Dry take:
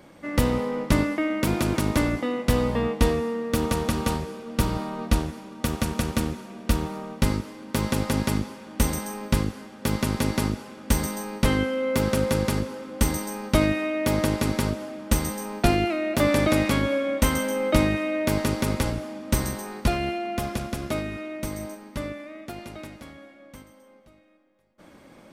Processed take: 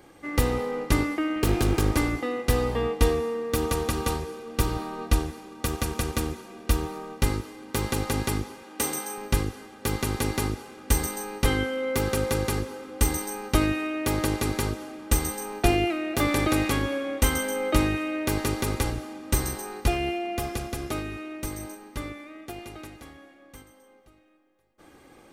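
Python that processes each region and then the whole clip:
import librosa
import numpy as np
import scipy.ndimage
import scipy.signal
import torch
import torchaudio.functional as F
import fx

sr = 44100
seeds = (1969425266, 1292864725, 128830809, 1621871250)

y = fx.chain(x, sr, fx.low_shelf(hz=97.0, db=11.5),
    fx.doppler_dist(depth_ms=0.49), at=(1.36, 1.96))
y = fx.chain(y, sr, fx.highpass(hz=250.0, slope=12),
    fx.doubler(ms=33.0, db=-12.5), at=(8.62, 9.18))
y = fx.high_shelf(y, sr, hz=7200.0, db=4.0)
y = y + 0.56 * np.pad(y, (int(2.5 * sr / 1000.0), 0))[:len(y)]
y = y * librosa.db_to_amplitude(-2.5)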